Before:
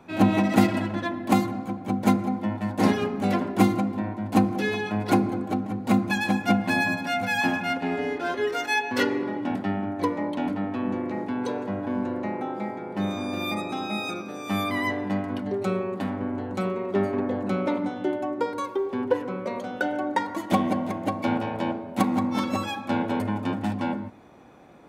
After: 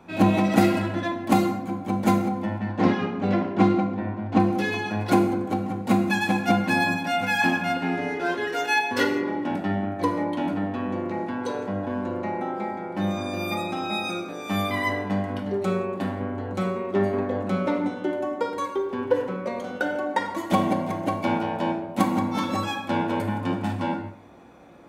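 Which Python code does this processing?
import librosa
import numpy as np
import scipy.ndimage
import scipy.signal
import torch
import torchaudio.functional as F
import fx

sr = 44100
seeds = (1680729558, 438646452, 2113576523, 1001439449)

y = fx.air_absorb(x, sr, metres=170.0, at=(2.58, 4.4))
y = fx.rev_gated(y, sr, seeds[0], gate_ms=210, shape='falling', drr_db=4.0)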